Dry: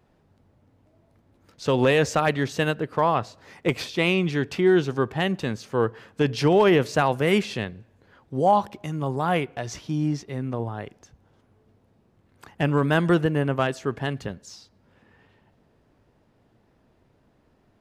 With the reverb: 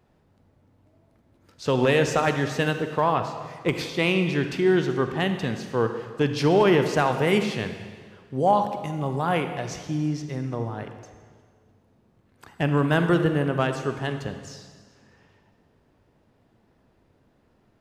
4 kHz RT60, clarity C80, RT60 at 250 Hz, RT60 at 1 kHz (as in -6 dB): 1.6 s, 9.0 dB, 1.7 s, 1.7 s